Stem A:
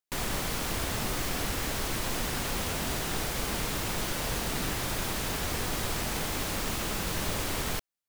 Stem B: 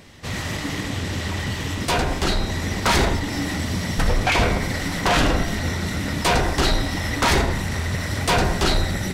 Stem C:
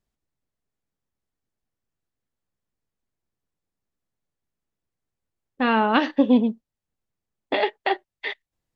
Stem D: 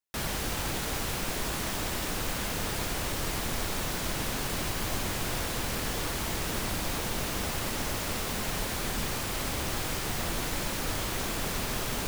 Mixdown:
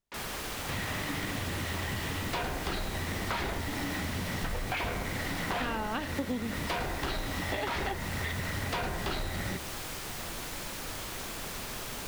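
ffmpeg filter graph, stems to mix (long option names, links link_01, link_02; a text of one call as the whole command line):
ffmpeg -i stem1.wav -i stem2.wav -i stem3.wav -i stem4.wav -filter_complex "[0:a]highpass=300,volume=-5.5dB[link_01];[1:a]adelay=450,volume=-0.5dB[link_02];[2:a]volume=-4dB[link_03];[3:a]volume=-5.5dB[link_04];[link_01][link_02]amix=inputs=2:normalize=0,lowpass=3500,acompressor=threshold=-32dB:ratio=1.5,volume=0dB[link_05];[link_03][link_04][link_05]amix=inputs=3:normalize=0,lowshelf=frequency=500:gain=-4,acompressor=threshold=-30dB:ratio=6" out.wav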